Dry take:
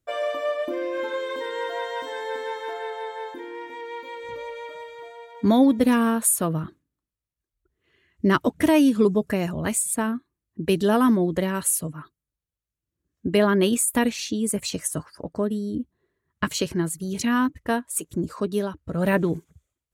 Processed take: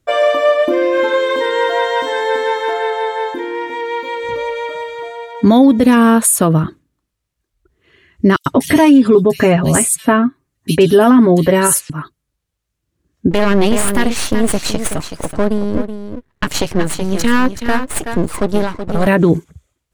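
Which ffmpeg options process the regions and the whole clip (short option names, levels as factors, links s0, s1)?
-filter_complex "[0:a]asettb=1/sr,asplit=3[s0][s1][s2];[s0]atrim=end=8.364[s3];[s1]atrim=start=8.36:end=11.9,asetpts=PTS-STARTPTS,afade=t=in:d=0.004:c=qsin,afade=t=out:st=3.536:d=0.004:c=qsin,aecho=1:1:7.4:0.59,atrim=end_sample=156114,acrossover=split=3600[s4][s5];[s4]adelay=100[s6];[s6][s5]amix=inputs=2:normalize=0,atrim=end_sample=156114[s7];[s2]atrim=start=11.896[s8];[s3][s7]acrossfade=d=0.004:c1=hsin:c2=qsin[s9];[s9][s8]acrossfade=d=0.004:c1=qsin:c2=hsin,asettb=1/sr,asplit=3[s10][s11][s12];[s10]atrim=end=13.314[s13];[s11]atrim=start=13.31:end=19.07,asetpts=PTS-STARTPTS,afade=t=in:d=0.004:c=qsin,afade=t=out:st=5.756:d=0.004:c=qsin,aeval=exprs='max(val(0),0)':c=same,aecho=1:1:376:0.335,atrim=end_sample=254016[s14];[s12]atrim=start=19.066[s15];[s13][s14]acrossfade=d=0.004:c1=hsin:c2=qsin[s16];[s16][s15]acrossfade=d=0.004:c1=qsin:c2=hsin,highshelf=f=12000:g=-10,alimiter=level_in=5.62:limit=0.891:release=50:level=0:latency=1,volume=0.891"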